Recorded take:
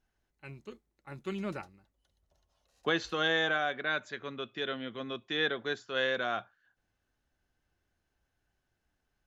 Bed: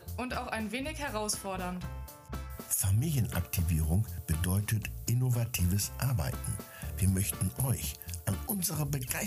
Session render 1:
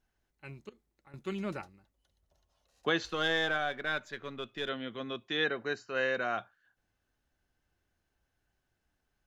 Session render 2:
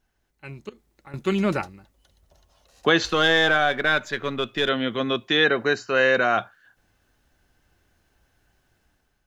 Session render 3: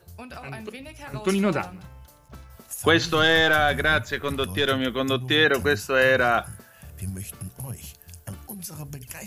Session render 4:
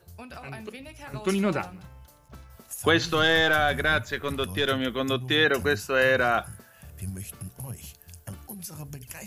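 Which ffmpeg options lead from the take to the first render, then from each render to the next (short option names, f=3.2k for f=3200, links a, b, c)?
-filter_complex "[0:a]asettb=1/sr,asplit=3[a][b][c];[a]atrim=end=0.694[d];[b]atrim=start=0.69:end=1.14,asetpts=PTS-STARTPTS,afade=t=in:d=0.004:c=qsin,afade=t=out:st=0.446:d=0.004:c=qsin,acompressor=threshold=-55dB:ratio=6:attack=3.2:release=140:knee=1:detection=peak[e];[c]atrim=start=1.136[f];[d][e]acrossfade=d=0.004:c1=hsin:c2=qsin[g];[g][f]acrossfade=d=0.004:c1=qsin:c2=hsin,asettb=1/sr,asplit=3[h][i][j];[h]atrim=end=3.054[k];[i]atrim=start=3.05:end=4.69,asetpts=PTS-STARTPTS,afade=t=in:d=0.004:c=qsin,afade=t=out:st=1.636:d=0.004:c=qsin,aeval=exprs='if(lt(val(0),0),0.708*val(0),val(0))':c=same[l];[j]atrim=start=4.686[m];[k][l]acrossfade=d=0.004:c1=hsin:c2=qsin[n];[n][m]acrossfade=d=0.004:c1=qsin:c2=hsin,asettb=1/sr,asplit=3[o][p][q];[o]atrim=end=5.444[r];[p]atrim=start=5.44:end=6.38,asetpts=PTS-STARTPTS,afade=t=in:d=0.004:c=qsin,afade=t=out:st=0.936:d=0.004:c=qsin,asuperstop=centerf=3400:order=20:qfactor=6.2[s];[q]atrim=start=6.376[t];[r][s]acrossfade=d=0.004:c1=hsin:c2=qsin[u];[u][t]acrossfade=d=0.004:c1=qsin:c2=hsin"
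-filter_complex "[0:a]dynaudnorm=f=490:g=3:m=8dB,asplit=2[a][b];[b]alimiter=limit=-18.5dB:level=0:latency=1,volume=0.5dB[c];[a][c]amix=inputs=2:normalize=0"
-filter_complex "[1:a]volume=-4.5dB[a];[0:a][a]amix=inputs=2:normalize=0"
-af "volume=-2.5dB"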